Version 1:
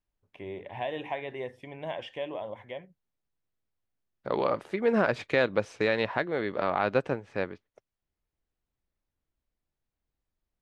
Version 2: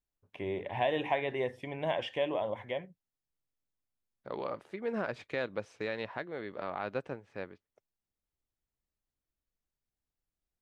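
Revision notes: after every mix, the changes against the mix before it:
first voice +3.5 dB; second voice -10.0 dB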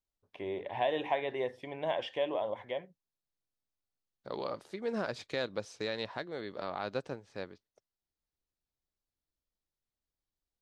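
first voice: add tone controls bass -8 dB, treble -14 dB; master: add resonant high shelf 3.3 kHz +8.5 dB, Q 1.5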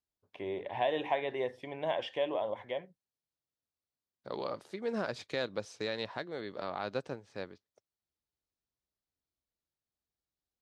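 master: add high-pass 58 Hz

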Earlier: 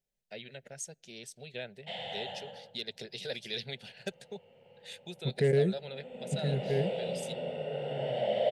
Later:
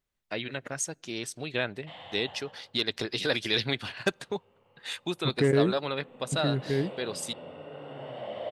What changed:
first voice +8.5 dB; background -8.5 dB; master: remove static phaser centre 300 Hz, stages 6

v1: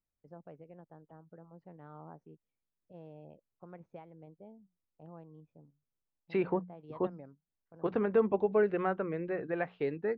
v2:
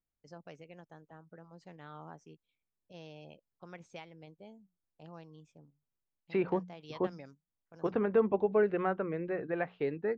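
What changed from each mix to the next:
first voice: remove low-pass 1 kHz 12 dB/octave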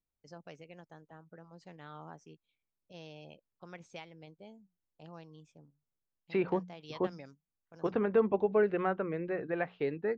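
master: add peaking EQ 4.6 kHz +3 dB 1.9 oct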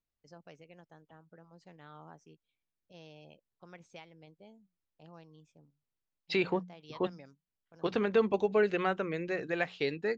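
first voice -3.5 dB; second voice: remove low-pass 1.5 kHz 12 dB/octave

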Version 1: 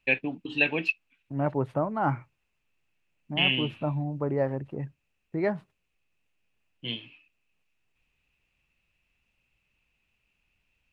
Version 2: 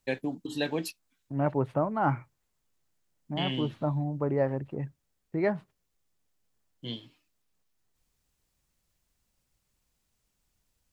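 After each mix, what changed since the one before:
first voice: remove resonant low-pass 2.6 kHz, resonance Q 11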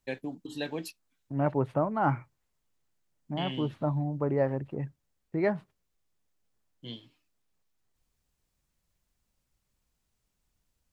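first voice -4.5 dB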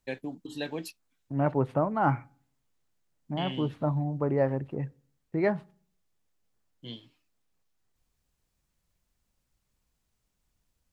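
reverb: on, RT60 0.50 s

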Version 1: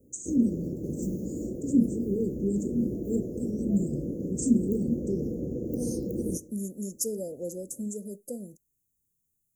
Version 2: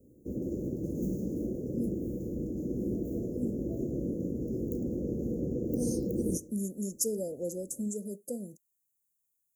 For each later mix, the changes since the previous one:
first voice: muted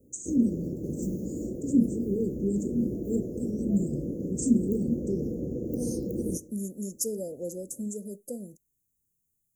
first voice: unmuted

